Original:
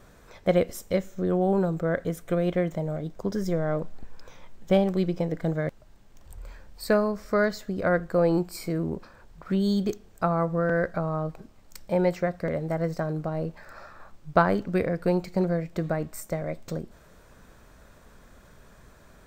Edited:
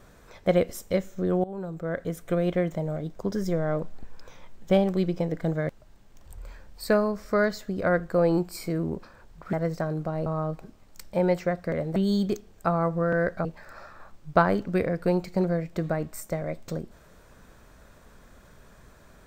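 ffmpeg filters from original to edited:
-filter_complex "[0:a]asplit=6[a][b][c][d][e][f];[a]atrim=end=1.44,asetpts=PTS-STARTPTS,afade=t=out:st=1.436:d=0.004:c=hsin:silence=0.11885[g];[b]atrim=start=1.44:end=9.532,asetpts=PTS-STARTPTS,afade=t=in:d=0.83:silence=0.11885[h];[c]atrim=start=12.718:end=13.452[i];[d]atrim=start=11.018:end=12.722[j];[e]atrim=start=9.528:end=11.022[k];[f]atrim=start=13.448[l];[g][h]concat=n=2:v=0:a=1[m];[m][i]acrossfade=d=0.004:c1=hsin:c2=hsin[n];[n][j]acrossfade=d=0.004:c1=hsin:c2=hsin[o];[o][k]acrossfade=d=0.004:c1=hsin:c2=hsin[p];[p][l]acrossfade=d=0.004:c1=hsin:c2=hsin"

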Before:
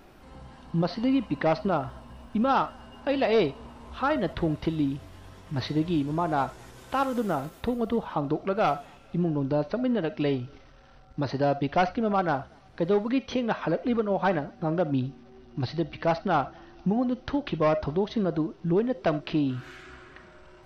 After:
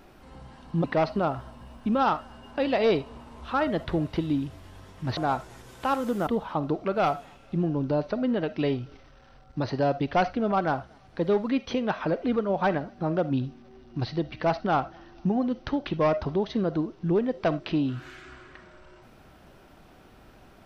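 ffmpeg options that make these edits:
-filter_complex "[0:a]asplit=4[a][b][c][d];[a]atrim=end=0.842[e];[b]atrim=start=1.328:end=5.662[f];[c]atrim=start=6.258:end=7.362[g];[d]atrim=start=7.878[h];[e][f]acrossfade=d=0.004:c1=hsin:c2=hsin[i];[i][g]acrossfade=d=0.004:c1=hsin:c2=hsin[j];[j][h]acrossfade=d=0.004:c1=hsin:c2=hsin"

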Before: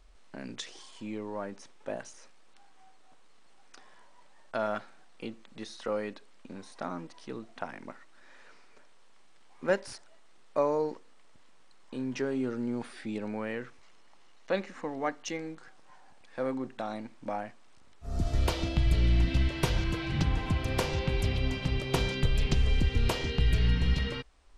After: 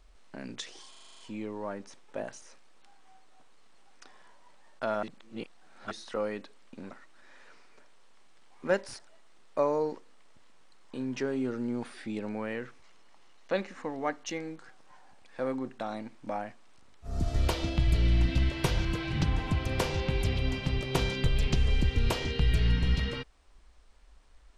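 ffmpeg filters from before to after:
-filter_complex "[0:a]asplit=11[a][b][c][d][e][f][g][h][i][j][k];[a]atrim=end=0.942[l];[b]atrim=start=0.898:end=0.942[m];[c]atrim=start=0.898:end=0.942[n];[d]atrim=start=0.898:end=0.942[o];[e]atrim=start=0.898:end=0.942[p];[f]atrim=start=0.898:end=0.942[q];[g]atrim=start=0.898:end=0.942[r];[h]atrim=start=0.898:end=4.752[s];[i]atrim=start=4.748:end=5.632,asetpts=PTS-STARTPTS,areverse[t];[j]atrim=start=5.628:end=6.632[u];[k]atrim=start=7.898[v];[l][m]acrossfade=d=0.004:c1=hsin:c2=hsin[w];[w][n]acrossfade=d=0.004:c1=hsin:c2=hsin[x];[x][o]acrossfade=d=0.004:c1=hsin:c2=hsin[y];[y][p]acrossfade=d=0.004:c1=hsin:c2=hsin[z];[z][q]acrossfade=d=0.004:c1=hsin:c2=hsin[aa];[aa][r]acrossfade=d=0.004:c1=hsin:c2=hsin[ab];[ab][s]acrossfade=d=0.004:c1=hsin:c2=hsin[ac];[ac][t]acrossfade=d=0.004:c1=hsin:c2=hsin[ad];[ad][u]acrossfade=d=0.004:c1=hsin:c2=hsin[ae];[ae][v]acrossfade=d=0.004:c1=hsin:c2=hsin"

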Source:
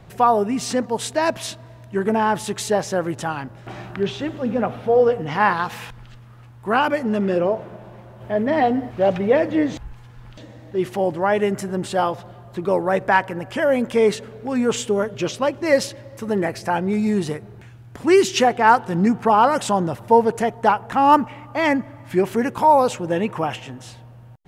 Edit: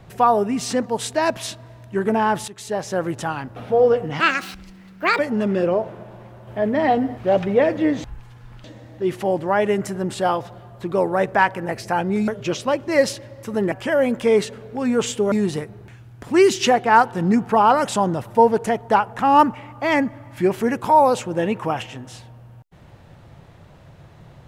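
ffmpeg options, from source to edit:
-filter_complex "[0:a]asplit=9[a][b][c][d][e][f][g][h][i];[a]atrim=end=2.48,asetpts=PTS-STARTPTS,afade=t=out:st=2.476:d=0.004:c=hsin:silence=0.149624[j];[b]atrim=start=2.48:end=3.562,asetpts=PTS-STARTPTS,afade=t=in:d=0.56:silence=0.149624[k];[c]atrim=start=4.718:end=5.364[l];[d]atrim=start=5.36:end=6.92,asetpts=PTS-STARTPTS,asetrate=69678,aresample=44100[m];[e]atrim=start=6.916:end=13.422[n];[f]atrim=start=16.458:end=17.052[o];[g]atrim=start=15.018:end=16.462[p];[h]atrim=start=13.418:end=15.022[q];[i]atrim=start=17.048[r];[j][k]concat=n=2:v=0:a=1[s];[s][l]acrossfade=d=0.004:c1=hsin:c2=hsin[t];[t][m]acrossfade=d=0.004:c1=hsin:c2=hsin[u];[u][n]acrossfade=d=0.004:c1=hsin:c2=hsin[v];[v][o]acrossfade=d=0.004:c1=hsin:c2=hsin[w];[w][p]acrossfade=d=0.004:c1=hsin:c2=hsin[x];[x][q]acrossfade=d=0.004:c1=hsin:c2=hsin[y];[y][r]acrossfade=d=0.004:c1=hsin:c2=hsin"

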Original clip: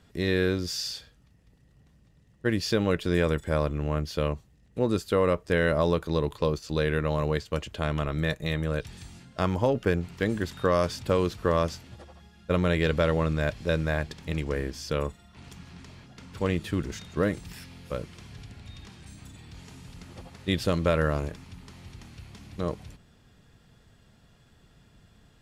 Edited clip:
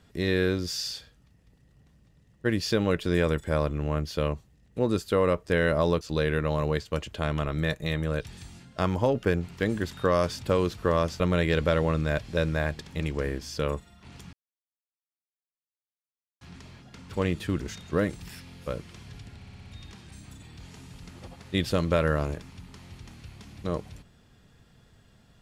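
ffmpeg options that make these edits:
-filter_complex "[0:a]asplit=9[a][b][c][d][e][f][g][h][i];[a]atrim=end=6.012[j];[b]atrim=start=6.608:end=11.802[k];[c]atrim=start=12.518:end=15.65,asetpts=PTS-STARTPTS,afade=t=out:st=3.128:d=0.004:c=hsin,apad=pad_dur=2.08[l];[d]atrim=start=15.65:end=18.662,asetpts=PTS-STARTPTS,afade=t=in:d=0.004:c=hsin[m];[e]atrim=start=18.598:end=18.662[n];[f]atrim=start=18.598:end=18.662[o];[g]atrim=start=18.598:end=18.662[p];[h]atrim=start=18.598:end=18.662[q];[i]atrim=start=18.598[r];[j][k]acrossfade=d=0.004:c1=hsin:c2=hsin[s];[l][m]concat=n=2:v=0:a=1[t];[s][t]acrossfade=d=0.004:c1=hsin:c2=hsin[u];[u][n]acrossfade=d=0.004:c1=hsin:c2=hsin[v];[v][o]acrossfade=d=0.004:c1=hsin:c2=hsin[w];[w][p]acrossfade=d=0.004:c1=hsin:c2=hsin[x];[x][q]acrossfade=d=0.004:c1=hsin:c2=hsin[y];[y][r]acrossfade=d=0.004:c1=hsin:c2=hsin"

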